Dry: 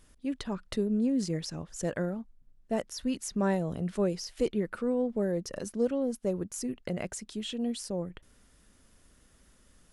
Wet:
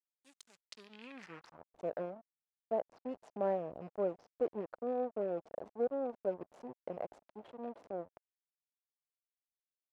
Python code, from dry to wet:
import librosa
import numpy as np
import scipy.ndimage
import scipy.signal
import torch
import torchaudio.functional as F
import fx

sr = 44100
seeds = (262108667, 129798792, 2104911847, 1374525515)

y = fx.rattle_buzz(x, sr, strikes_db=-35.0, level_db=-35.0)
y = fx.backlash(y, sr, play_db=-29.0)
y = fx.filter_sweep_bandpass(y, sr, from_hz=7700.0, to_hz=660.0, start_s=0.55, end_s=1.74, q=2.3)
y = y * 10.0 ** (2.0 / 20.0)